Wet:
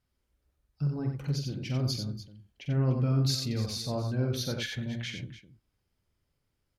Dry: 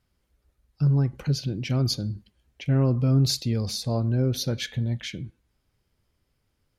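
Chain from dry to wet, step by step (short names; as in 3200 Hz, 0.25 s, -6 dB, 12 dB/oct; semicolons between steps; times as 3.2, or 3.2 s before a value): 2.87–5.15 bell 1600 Hz +6 dB 2.2 oct; tapped delay 47/90/294 ms -8/-5.5/-14.5 dB; gain -7.5 dB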